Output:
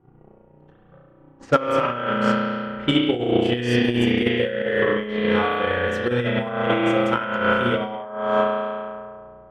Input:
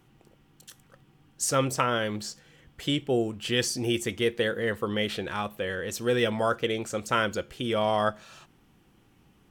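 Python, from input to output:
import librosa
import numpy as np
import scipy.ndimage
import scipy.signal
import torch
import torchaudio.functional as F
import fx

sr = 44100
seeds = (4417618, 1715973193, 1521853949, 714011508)

y = fx.bass_treble(x, sr, bass_db=-4, treble_db=-9)
y = fx.rev_spring(y, sr, rt60_s=2.4, pass_ms=(33,), chirp_ms=75, drr_db=-7.0)
y = fx.hpss(y, sr, part='percussive', gain_db=-9)
y = fx.over_compress(y, sr, threshold_db=-24.0, ratio=-0.5)
y = fx.transient(y, sr, attack_db=10, sustain_db=-3)
y = fx.env_lowpass(y, sr, base_hz=780.0, full_db=-21.0)
y = F.gain(torch.from_numpy(y), 2.5).numpy()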